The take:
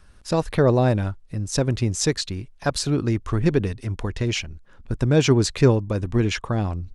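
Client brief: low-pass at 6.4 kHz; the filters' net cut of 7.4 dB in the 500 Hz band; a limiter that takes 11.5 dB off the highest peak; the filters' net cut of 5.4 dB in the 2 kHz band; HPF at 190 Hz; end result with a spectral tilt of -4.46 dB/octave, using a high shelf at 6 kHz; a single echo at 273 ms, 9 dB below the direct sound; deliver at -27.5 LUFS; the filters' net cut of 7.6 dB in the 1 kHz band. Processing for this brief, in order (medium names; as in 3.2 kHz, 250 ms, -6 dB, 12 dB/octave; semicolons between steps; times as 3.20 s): high-pass 190 Hz; low-pass 6.4 kHz; peaking EQ 500 Hz -8 dB; peaking EQ 1 kHz -6 dB; peaking EQ 2 kHz -5.5 dB; treble shelf 6 kHz +6 dB; peak limiter -20.5 dBFS; delay 273 ms -9 dB; trim +4.5 dB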